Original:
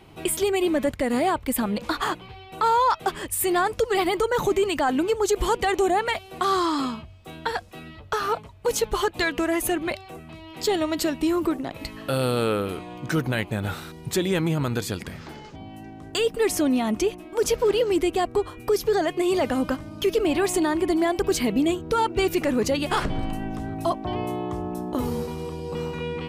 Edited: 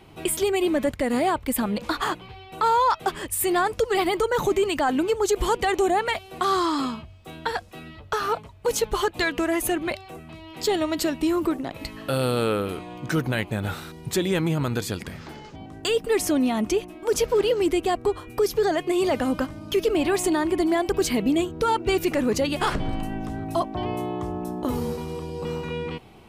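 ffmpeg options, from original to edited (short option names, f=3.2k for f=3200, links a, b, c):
-filter_complex "[0:a]asplit=2[a][b];[a]atrim=end=15.662[c];[b]atrim=start=15.958[d];[c][d]acrossfade=d=0.004:c1=hsin:c2=hsin"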